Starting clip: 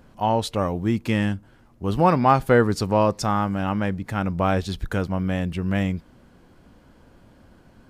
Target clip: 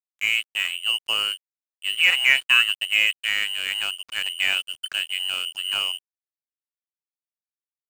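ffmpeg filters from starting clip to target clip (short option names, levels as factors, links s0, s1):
-af "lowpass=f=2600:t=q:w=0.5098,lowpass=f=2600:t=q:w=0.6013,lowpass=f=2600:t=q:w=0.9,lowpass=f=2600:t=q:w=2.563,afreqshift=-3100,aeval=exprs='sgn(val(0))*max(abs(val(0))-0.0316,0)':c=same"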